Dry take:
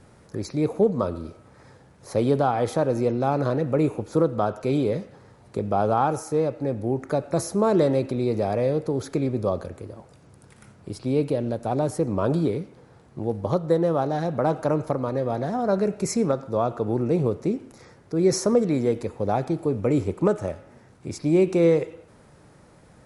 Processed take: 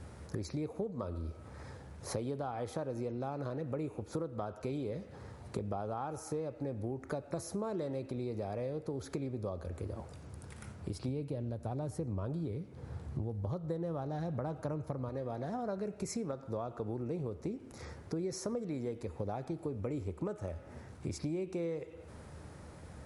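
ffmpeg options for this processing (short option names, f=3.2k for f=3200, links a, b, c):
-filter_complex "[0:a]asettb=1/sr,asplit=3[a][b][c];[a]atrim=end=11.084[d];[b]atrim=start=11.08:end=15.09,asetpts=PTS-STARTPTS,afade=t=in:d=0.004:c=qsin,afade=t=out:st=4.006:d=0.004:c=qsin,equalizer=f=98:w=0.68:g=8.5[e];[c]atrim=start=15.086[f];[d][e]acrossfade=d=0.004:c1=hsin:c2=qsin[g];[g][f]acrossfade=d=0.004:c1=qsin:c2=hsin,equalizer=f=76:t=o:w=0.43:g=14.5,acompressor=threshold=-35dB:ratio=8"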